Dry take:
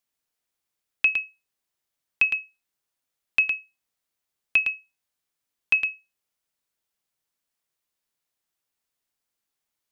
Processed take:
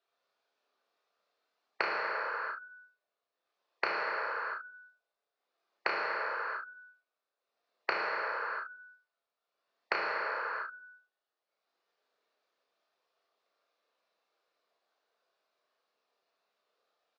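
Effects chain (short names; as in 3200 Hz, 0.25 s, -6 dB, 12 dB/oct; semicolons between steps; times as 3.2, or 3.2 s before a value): formant sharpening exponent 2; treble ducked by the level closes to 510 Hz, closed at -22 dBFS; gate -55 dBFS, range -27 dB; compressor 2:1, threshold -34 dBFS, peak gain reduction 8 dB; transient shaper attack +4 dB, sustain -9 dB; on a send: early reflections 18 ms -5.5 dB, 36 ms -17 dB; on the sum: non-linear reverb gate 0.42 s falling, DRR -3.5 dB; speed mistake 78 rpm record played at 45 rpm; speaker cabinet 390–4200 Hz, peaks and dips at 460 Hz +9 dB, 670 Hz +8 dB, 1200 Hz +4 dB, 2100 Hz -4 dB, 3100 Hz -6 dB; spectral compressor 10:1; gain -1 dB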